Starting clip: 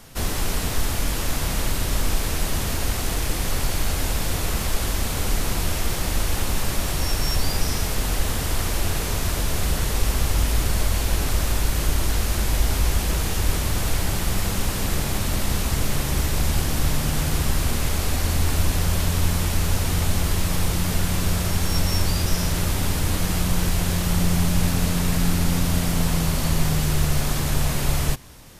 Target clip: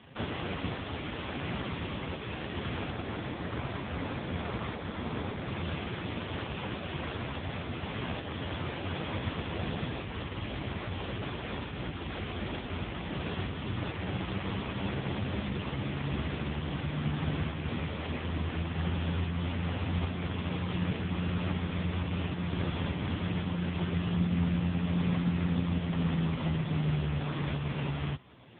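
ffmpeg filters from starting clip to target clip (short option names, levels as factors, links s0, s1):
-filter_complex "[0:a]asplit=3[s0][s1][s2];[s0]afade=t=out:st=2.9:d=0.02[s3];[s1]equalizer=f=2900:t=o:w=0.81:g=-5,afade=t=in:st=2.9:d=0.02,afade=t=out:st=5.47:d=0.02[s4];[s2]afade=t=in:st=5.47:d=0.02[s5];[s3][s4][s5]amix=inputs=3:normalize=0,alimiter=limit=0.211:level=0:latency=1:release=497" -ar 8000 -c:a libopencore_amrnb -b:a 5150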